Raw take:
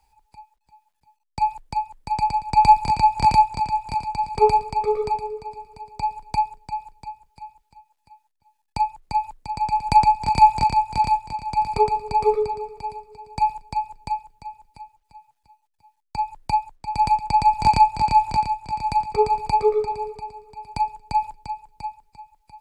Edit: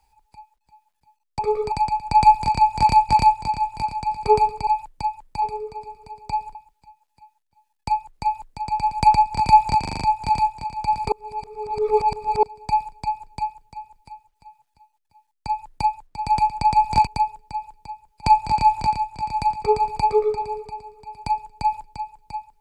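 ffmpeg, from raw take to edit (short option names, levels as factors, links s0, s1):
-filter_complex "[0:a]asplit=16[s0][s1][s2][s3][s4][s5][s6][s7][s8][s9][s10][s11][s12][s13][s14][s15];[s0]atrim=end=1.392[s16];[s1]atrim=start=4.788:end=5.122[s17];[s2]atrim=start=2.138:end=3.512[s18];[s3]atrim=start=3.208:end=4.792[s19];[s4]atrim=start=1.388:end=2.142[s20];[s5]atrim=start=5.118:end=6.252[s21];[s6]atrim=start=7.438:end=10.732[s22];[s7]atrim=start=10.688:end=10.732[s23];[s8]atrim=start=10.688:end=10.732[s24];[s9]atrim=start=10.688:end=10.732[s25];[s10]atrim=start=10.688:end=10.732[s26];[s11]atrim=start=10.688:end=11.812[s27];[s12]atrim=start=11.808:end=13.122,asetpts=PTS-STARTPTS,areverse[s28];[s13]atrim=start=13.118:end=17.762[s29];[s14]atrim=start=6.248:end=7.442[s30];[s15]atrim=start=17.758[s31];[s16][s17]acrossfade=d=0.004:c1=hsin:c2=hsin[s32];[s32][s18]acrossfade=d=0.004:c1=hsin:c2=hsin[s33];[s33][s19]acrossfade=d=0.004:c1=hsin:c2=hsin[s34];[s34][s20]acrossfade=d=0.004:c1=hsin:c2=hsin[s35];[s35][s21]acrossfade=d=0.004:c1=hsin:c2=hsin[s36];[s36][s22]acrossfade=d=0.004:c1=hsin:c2=hsin[s37];[s37][s23]acrossfade=d=0.004:c1=hsin:c2=hsin[s38];[s38][s24]acrossfade=d=0.004:c1=hsin:c2=hsin[s39];[s39][s25]acrossfade=d=0.004:c1=hsin:c2=hsin[s40];[s40][s26]acrossfade=d=0.004:c1=hsin:c2=hsin[s41];[s41][s27]acrossfade=d=0.004:c1=hsin:c2=hsin[s42];[s42][s28]acrossfade=d=0.004:c1=hsin:c2=hsin[s43];[s43][s29]acrossfade=d=0.004:c1=hsin:c2=hsin[s44];[s44][s30]acrossfade=d=0.004:c1=hsin:c2=hsin[s45];[s45][s31]acrossfade=d=0.004:c1=hsin:c2=hsin"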